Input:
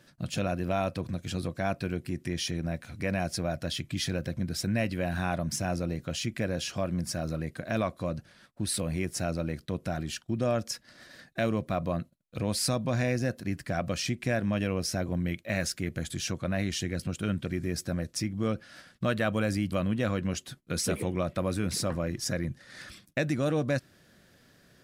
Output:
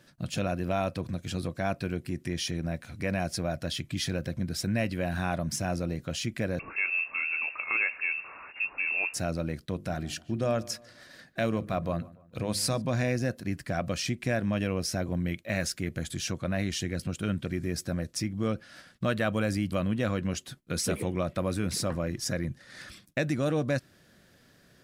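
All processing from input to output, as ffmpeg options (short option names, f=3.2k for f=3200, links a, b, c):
-filter_complex "[0:a]asettb=1/sr,asplit=3[a][b][c];[a]atrim=end=6.594[d];[b]atrim=start=6.59:end=9.14,asetpts=PTS-STARTPTS,afade=t=in:d=0.004:c=qsin,afade=t=out:st=2.546:d=0.004:c=qsin,aeval=exprs='val(0)+0.5*0.0106*sgn(val(0))':c=same,lowpass=f=2.4k:t=q:w=0.5098,lowpass=f=2.4k:t=q:w=0.6013,lowpass=f=2.4k:t=q:w=0.9,lowpass=f=2.4k:t=q:w=2.563,afreqshift=-2800[e];[c]atrim=start=9.136[f];[d][e]acrossfade=d=0.004:c1=hsin:c2=qsin[g];[g][f]acrossfade=d=0.004:c1=qsin:c2=hsin,asettb=1/sr,asplit=3[h][i][j];[h]atrim=end=9.744[k];[i]atrim=start=9.74:end=12.82,asetpts=PTS-STARTPTS,afade=t=in:d=0.004:c=qsin,afade=t=out:st=3.076:d=0.004:c=qsin,bandreject=f=50:t=h:w=6,bandreject=f=100:t=h:w=6,bandreject=f=150:t=h:w=6,bandreject=f=200:t=h:w=6,bandreject=f=250:t=h:w=6,bandreject=f=300:t=h:w=6,bandreject=f=350:t=h:w=6,asplit=2[l][m];[m]adelay=147,lowpass=f=2.3k:p=1,volume=-20.5dB,asplit=2[n][o];[o]adelay=147,lowpass=f=2.3k:p=1,volume=0.46,asplit=2[p][q];[q]adelay=147,lowpass=f=2.3k:p=1,volume=0.46[r];[l][n][p][r]amix=inputs=4:normalize=0,atrim=end_sample=135828[s];[j]atrim=start=12.816[t];[k][s]acrossfade=d=0.004:c1=hsin:c2=qsin[u];[u][t]acrossfade=d=0.004:c1=qsin:c2=hsin"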